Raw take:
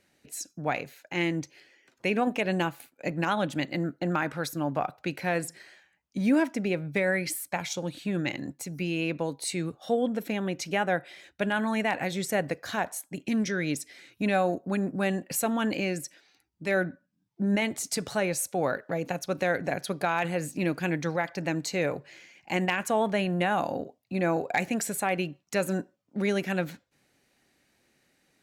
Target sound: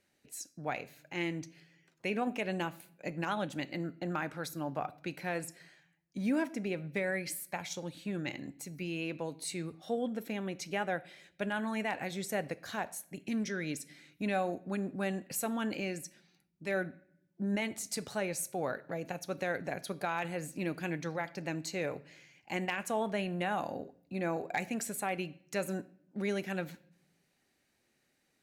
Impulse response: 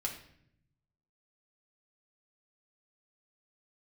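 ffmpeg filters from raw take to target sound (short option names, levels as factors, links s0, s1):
-filter_complex "[0:a]asplit=2[s0][s1];[1:a]atrim=start_sample=2205,highshelf=f=5300:g=8[s2];[s1][s2]afir=irnorm=-1:irlink=0,volume=0.224[s3];[s0][s3]amix=inputs=2:normalize=0,volume=0.355"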